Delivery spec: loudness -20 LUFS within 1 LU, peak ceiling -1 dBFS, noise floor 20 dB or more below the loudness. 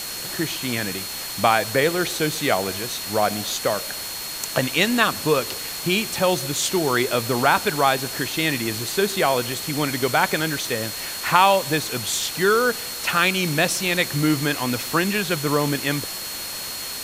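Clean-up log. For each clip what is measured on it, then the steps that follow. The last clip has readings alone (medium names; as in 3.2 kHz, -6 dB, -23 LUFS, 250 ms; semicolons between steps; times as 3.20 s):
steady tone 4.3 kHz; tone level -34 dBFS; noise floor -31 dBFS; noise floor target -42 dBFS; loudness -21.5 LUFS; peak level -1.5 dBFS; loudness target -20.0 LUFS
-> band-stop 4.3 kHz, Q 30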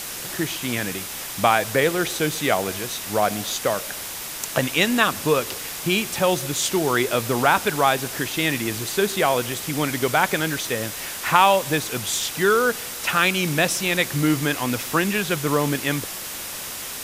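steady tone not found; noise floor -33 dBFS; noise floor target -42 dBFS
-> noise reduction 9 dB, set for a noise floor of -33 dBFS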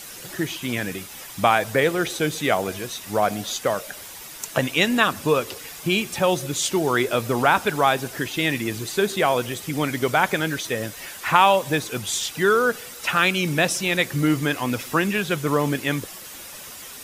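noise floor -39 dBFS; noise floor target -43 dBFS
-> noise reduction 6 dB, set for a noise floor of -39 dBFS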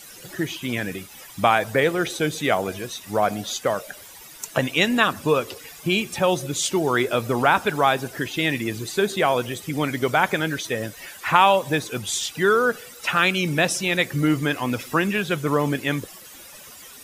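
noise floor -43 dBFS; loudness -22.5 LUFS; peak level -1.5 dBFS; loudness target -20.0 LUFS
-> trim +2.5 dB; peak limiter -1 dBFS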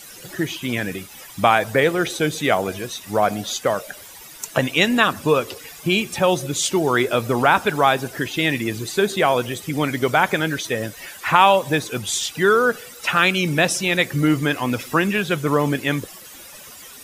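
loudness -20.0 LUFS; peak level -1.0 dBFS; noise floor -41 dBFS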